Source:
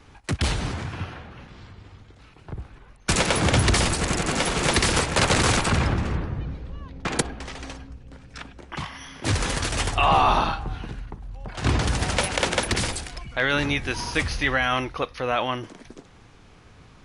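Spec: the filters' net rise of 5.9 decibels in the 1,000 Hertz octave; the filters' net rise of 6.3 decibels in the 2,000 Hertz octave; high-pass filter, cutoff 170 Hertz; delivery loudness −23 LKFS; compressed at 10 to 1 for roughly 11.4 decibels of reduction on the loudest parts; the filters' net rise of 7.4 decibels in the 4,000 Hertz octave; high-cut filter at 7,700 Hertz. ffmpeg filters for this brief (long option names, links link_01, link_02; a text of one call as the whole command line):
ffmpeg -i in.wav -af "highpass=170,lowpass=7700,equalizer=frequency=1000:width_type=o:gain=6,equalizer=frequency=2000:width_type=o:gain=4,equalizer=frequency=4000:width_type=o:gain=8,acompressor=threshold=-21dB:ratio=10,volume=3dB" out.wav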